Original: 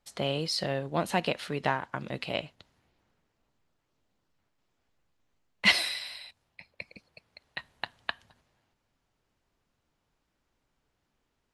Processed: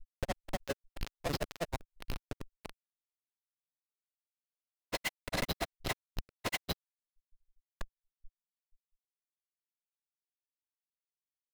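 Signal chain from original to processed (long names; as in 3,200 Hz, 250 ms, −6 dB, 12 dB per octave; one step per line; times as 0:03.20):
auto-filter high-pass square 1.7 Hz 540–4,600 Hz
comparator with hysteresis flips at −27 dBFS
granular cloud 55 ms, grains 25 per second, spray 858 ms
level +5.5 dB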